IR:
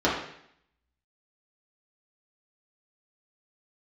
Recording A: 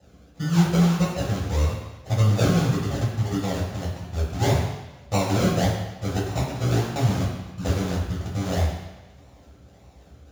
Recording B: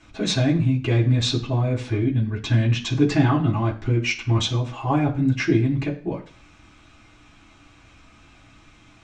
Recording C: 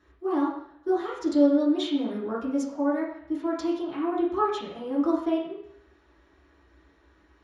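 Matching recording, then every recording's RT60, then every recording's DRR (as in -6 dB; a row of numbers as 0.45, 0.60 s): C; 1.1, 0.45, 0.70 s; -8.5, -4.5, -7.5 dB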